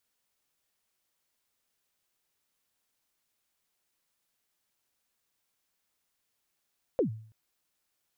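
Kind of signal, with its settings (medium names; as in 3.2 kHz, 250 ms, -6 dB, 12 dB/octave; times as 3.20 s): kick drum length 0.33 s, from 570 Hz, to 110 Hz, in 108 ms, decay 0.53 s, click off, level -20 dB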